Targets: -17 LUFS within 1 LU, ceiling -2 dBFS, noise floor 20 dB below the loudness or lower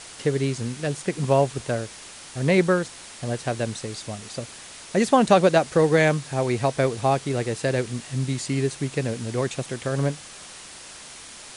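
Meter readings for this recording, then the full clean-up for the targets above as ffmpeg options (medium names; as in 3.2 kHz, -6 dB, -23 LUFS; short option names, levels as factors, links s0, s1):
noise floor -43 dBFS; noise floor target -44 dBFS; loudness -24.0 LUFS; peak level -5.0 dBFS; loudness target -17.0 LUFS
-> -af "afftdn=nr=6:nf=-43"
-af "volume=2.24,alimiter=limit=0.794:level=0:latency=1"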